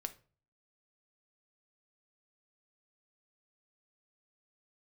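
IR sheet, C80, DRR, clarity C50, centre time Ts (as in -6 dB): 22.5 dB, 8.0 dB, 16.0 dB, 5 ms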